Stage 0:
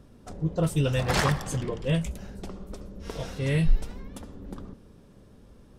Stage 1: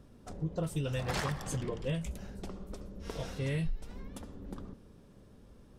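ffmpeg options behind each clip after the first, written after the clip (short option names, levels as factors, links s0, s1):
-af "acompressor=threshold=0.0501:ratio=6,volume=0.631"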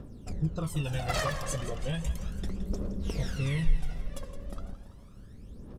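-filter_complex "[0:a]aphaser=in_gain=1:out_gain=1:delay=1.9:decay=0.73:speed=0.35:type=triangular,asplit=2[s0][s1];[s1]aecho=0:1:167|334|501|668|835|1002:0.224|0.132|0.0779|0.046|0.0271|0.016[s2];[s0][s2]amix=inputs=2:normalize=0,volume=1.12"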